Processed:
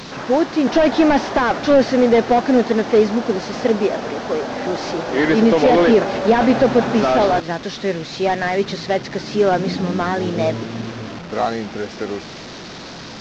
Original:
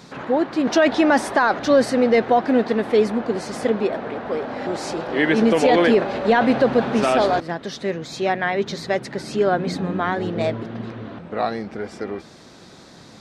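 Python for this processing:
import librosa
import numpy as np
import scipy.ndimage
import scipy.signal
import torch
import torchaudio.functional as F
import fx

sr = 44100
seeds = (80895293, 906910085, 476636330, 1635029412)

y = fx.delta_mod(x, sr, bps=32000, step_db=-31.0)
y = F.gain(torch.from_numpy(y), 3.5).numpy()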